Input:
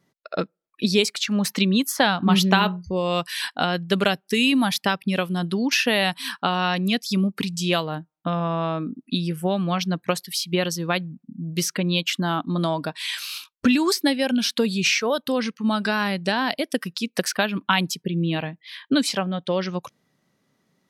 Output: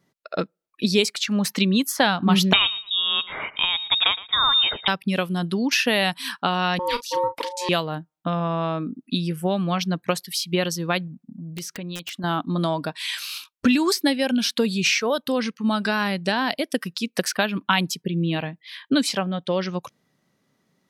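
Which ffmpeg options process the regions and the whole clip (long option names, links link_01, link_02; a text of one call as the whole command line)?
ffmpeg -i in.wav -filter_complex "[0:a]asettb=1/sr,asplit=3[link_01][link_02][link_03];[link_01]atrim=end=2.534[link_04];[link_02]atrim=start=2.53:end=4.88,asetpts=PTS-STARTPTS,afade=type=in:duration=0.004:curve=qsin,afade=type=out:start_time=2.346:duration=0.004:curve=qsin,aecho=1:1:115|230:0.126|0.0352,atrim=end_sample=103635,lowpass=frequency=3300:width_type=q:width=0.5098,lowpass=frequency=3300:width_type=q:width=0.6013,lowpass=frequency=3300:width_type=q:width=0.9,lowpass=frequency=3300:width_type=q:width=2.563,afreqshift=-3900[link_05];[link_03]atrim=start=4.876[link_06];[link_04][link_05]acrossfade=duration=0.004:curve1=hsin:curve2=qsin[link_07];[link_07][link_06]acrossfade=duration=0.004:curve1=qsin:curve2=hsin,asettb=1/sr,asplit=3[link_08][link_09][link_10];[link_08]atrim=end=6.794[link_11];[link_09]atrim=start=6.79:end=7.69,asetpts=PTS-STARTPTS,afade=type=in:duration=0.004:curve=qsin,afade=type=out:start_time=0.896:duration=0.004:curve=qsin,aeval=exprs='val(0)*sin(2*PI*720*n/s)':channel_layout=same,asplit=2[link_12][link_13];[link_13]adelay=36,volume=-12.5dB[link_14];[link_12][link_14]amix=inputs=2:normalize=0,atrim=end_sample=39690[link_15];[link_10]atrim=start=7.686[link_16];[link_11][link_15]acrossfade=duration=0.004:curve1=hsin:curve2=qsin[link_17];[link_17][link_16]acrossfade=duration=0.004:curve1=qsin:curve2=hsin,asettb=1/sr,asplit=3[link_18][link_19][link_20];[link_18]atrim=end=11.074[link_21];[link_19]atrim=start=11.07:end=12.24,asetpts=PTS-STARTPTS,afade=type=in:duration=0.004:curve=qsin,afade=type=out:start_time=1.166:duration=0.004:curve=qsin,acompressor=threshold=-34dB:ratio=2.5:attack=3.2:release=140:knee=1:detection=peak,aeval=exprs='(mod(13.3*val(0)+1,2)-1)/13.3':channel_layout=same[link_22];[link_20]atrim=start=12.236[link_23];[link_21][link_22]acrossfade=duration=0.004:curve1=hsin:curve2=qsin[link_24];[link_24][link_23]acrossfade=duration=0.004:curve1=qsin:curve2=hsin" out.wav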